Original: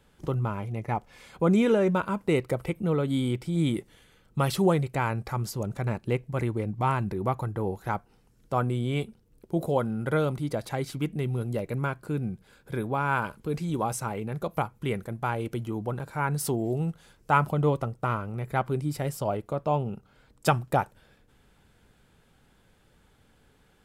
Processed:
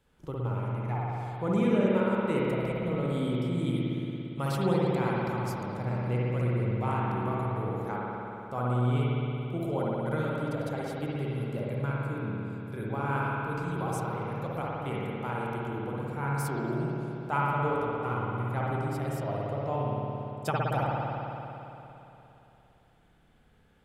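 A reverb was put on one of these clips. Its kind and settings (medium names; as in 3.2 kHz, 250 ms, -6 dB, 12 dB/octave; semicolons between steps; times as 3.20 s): spring tank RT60 3.2 s, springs 57 ms, chirp 55 ms, DRR -5.5 dB; trim -9 dB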